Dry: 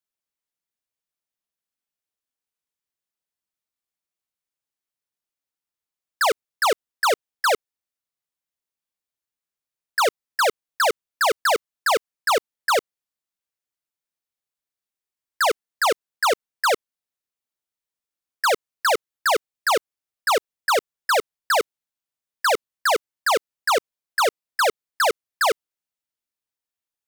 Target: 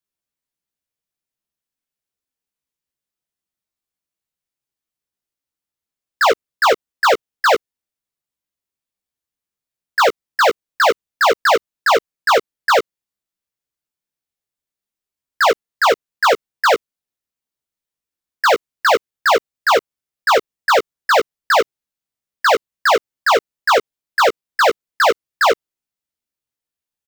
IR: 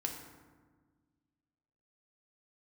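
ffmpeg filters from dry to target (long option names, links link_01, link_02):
-filter_complex "[0:a]asplit=2[link_01][link_02];[link_02]adynamicsmooth=sensitivity=4.5:basefreq=590,volume=-1.5dB[link_03];[link_01][link_03]amix=inputs=2:normalize=0,asplit=2[link_04][link_05];[link_05]adelay=15,volume=-5dB[link_06];[link_04][link_06]amix=inputs=2:normalize=0"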